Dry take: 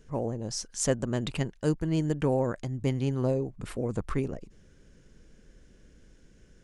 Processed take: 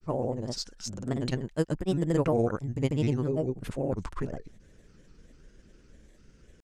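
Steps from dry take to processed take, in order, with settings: grains 0.1 s, pitch spread up and down by 3 st; gain +2 dB

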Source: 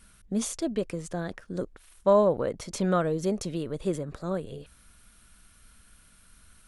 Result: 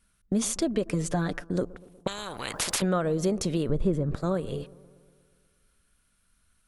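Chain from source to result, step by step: gate -43 dBFS, range -19 dB; 0.92–1.42 comb 6.8 ms, depth 80%; 3.69–4.15 tilt -3 dB/oct; compressor 4:1, threshold -30 dBFS, peak gain reduction 12.5 dB; analogue delay 0.12 s, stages 1024, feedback 66%, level -21 dB; 2.07–2.82 spectral compressor 10:1; gain +7 dB

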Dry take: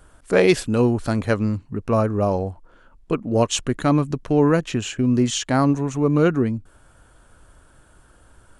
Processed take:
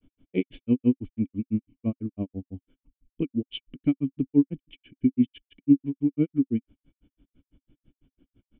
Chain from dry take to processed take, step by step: grains 0.1 s, grains 6/s, pitch spread up and down by 0 st; vocal tract filter i; gain +6 dB

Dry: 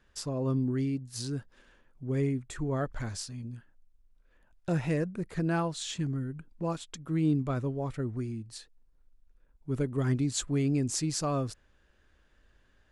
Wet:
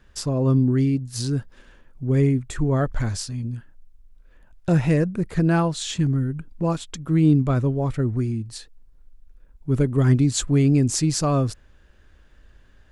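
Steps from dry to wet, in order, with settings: low shelf 180 Hz +6.5 dB; gain +7.5 dB

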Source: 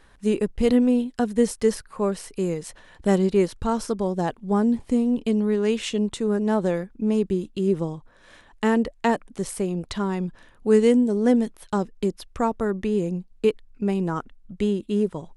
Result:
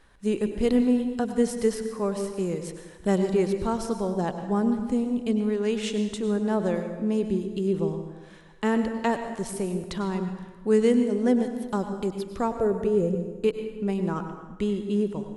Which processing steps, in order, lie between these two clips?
12.54–13.15 graphic EQ 125/250/500/1000/2000/4000 Hz +12/-8/+11/-6/-5/-5 dB; on a send: reverb RT60 1.3 s, pre-delay 88 ms, DRR 7 dB; on the sum: gain -3.5 dB

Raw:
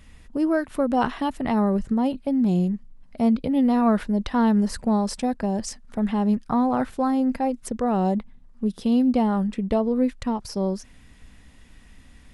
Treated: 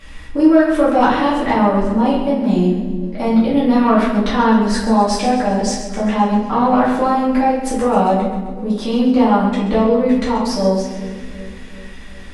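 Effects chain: high shelf 8000 Hz -2.5 dB; in parallel at 0 dB: compressor, threshold -32 dBFS, peak gain reduction 15.5 dB; on the sum: overdrive pedal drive 11 dB, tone 5000 Hz, clips at -7 dBFS; split-band echo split 500 Hz, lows 0.373 s, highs 0.131 s, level -11 dB; shoebox room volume 120 m³, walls mixed, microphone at 2.3 m; gain -4 dB

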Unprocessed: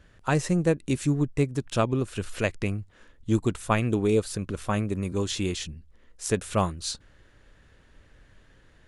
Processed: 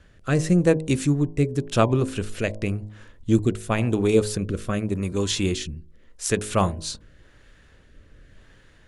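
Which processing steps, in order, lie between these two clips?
de-hum 52.66 Hz, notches 20; rotary speaker horn 0.9 Hz; gain +6 dB

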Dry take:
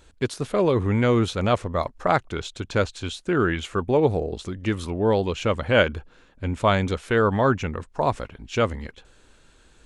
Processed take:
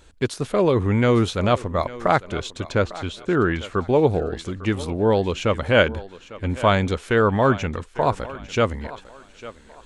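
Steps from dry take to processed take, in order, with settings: 2.72–3.76 high shelf 3900 Hz -9 dB; on a send: thinning echo 0.851 s, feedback 32%, high-pass 270 Hz, level -16 dB; on the sum: gain +2 dB

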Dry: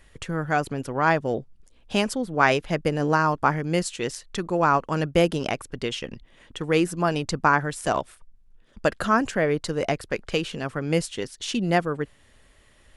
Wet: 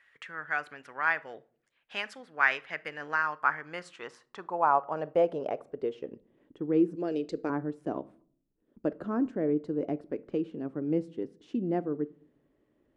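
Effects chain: band-pass sweep 1800 Hz -> 310 Hz, 3.26–6.47; 6.95–7.5 graphic EQ 125/250/500/1000/2000/4000/8000 Hz -10/-5/+8/-11/+6/+11/+11 dB; shoebox room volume 570 m³, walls furnished, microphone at 0.33 m

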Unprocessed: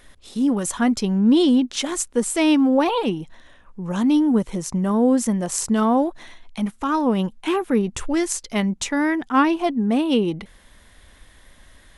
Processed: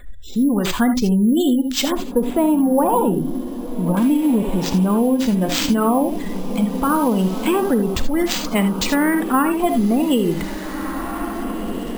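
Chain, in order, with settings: low shelf 75 Hz +11 dB; spectral gate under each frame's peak -30 dB strong; LPF 8700 Hz 12 dB/oct; diffused feedback echo 1.754 s, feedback 41%, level -13 dB; non-linear reverb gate 0.1 s rising, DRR 7.5 dB; compressor, threshold -19 dBFS, peak gain reduction 8.5 dB; 1.92–3.97 EQ curve 360 Hz 0 dB, 960 Hz +4 dB, 2300 Hz -16 dB; careless resampling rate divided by 4×, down none, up hold; gain +5.5 dB

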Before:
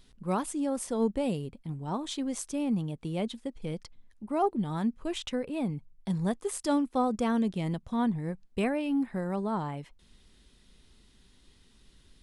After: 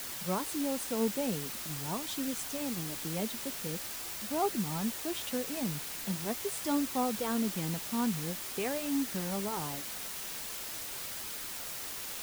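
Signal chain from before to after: HPF 99 Hz 24 dB/oct; requantised 6-bit, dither triangular; flange 0.44 Hz, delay 0.4 ms, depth 4.8 ms, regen -61%

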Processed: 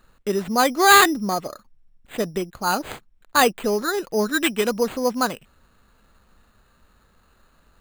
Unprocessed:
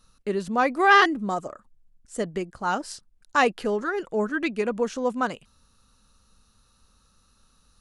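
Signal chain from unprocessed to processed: 4.34–4.76 high shelf 2300 Hz +8.5 dB; careless resampling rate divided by 8×, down none, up hold; gain +3.5 dB

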